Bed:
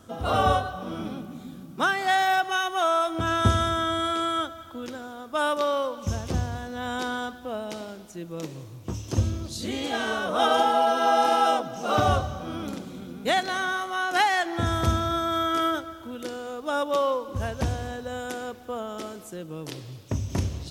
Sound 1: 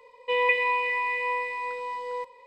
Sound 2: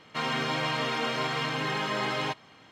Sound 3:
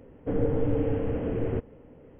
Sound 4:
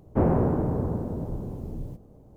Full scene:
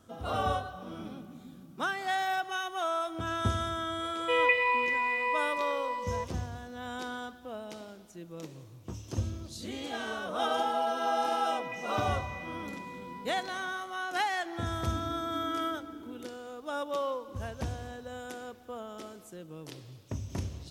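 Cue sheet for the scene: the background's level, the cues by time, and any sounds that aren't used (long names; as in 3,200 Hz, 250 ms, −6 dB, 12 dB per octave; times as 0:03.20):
bed −8.5 dB
0:04.00: mix in 1 −2 dB
0:11.23: mix in 1 −4 dB + downward compressor 2 to 1, threshold −45 dBFS
0:14.67: mix in 3 −8.5 dB + formant filter u
not used: 2, 4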